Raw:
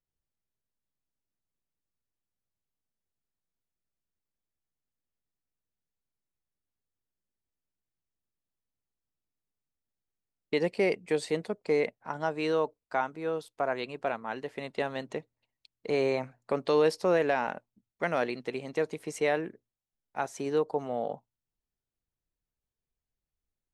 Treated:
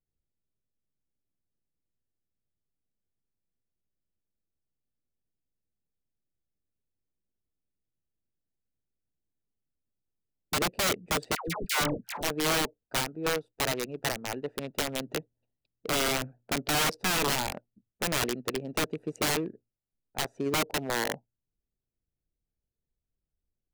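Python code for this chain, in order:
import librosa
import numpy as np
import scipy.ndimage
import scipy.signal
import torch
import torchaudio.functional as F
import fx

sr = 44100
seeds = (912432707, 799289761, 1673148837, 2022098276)

y = fx.wiener(x, sr, points=41)
y = (np.mod(10.0 ** (26.0 / 20.0) * y + 1.0, 2.0) - 1.0) / 10.0 ** (26.0 / 20.0)
y = fx.dispersion(y, sr, late='lows', ms=126.0, hz=750.0, at=(11.35, 12.23))
y = y * 10.0 ** (4.5 / 20.0)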